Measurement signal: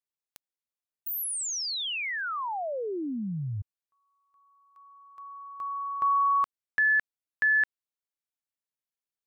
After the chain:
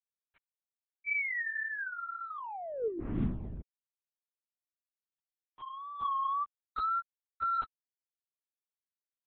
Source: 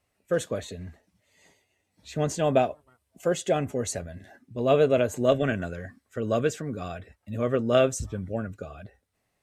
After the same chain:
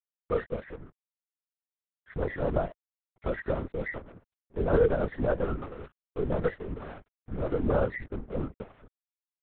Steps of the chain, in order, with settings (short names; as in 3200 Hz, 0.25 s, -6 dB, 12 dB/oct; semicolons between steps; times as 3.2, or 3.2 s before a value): nonlinear frequency compression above 1200 Hz 4:1; in parallel at -3 dB: compressor 6:1, threshold -33 dBFS; on the sum: vibrato 1.9 Hz 81 cents; small resonant body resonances 220/450 Hz, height 10 dB, ringing for 60 ms; crossover distortion -35 dBFS; LPC vocoder at 8 kHz whisper; gain -8.5 dB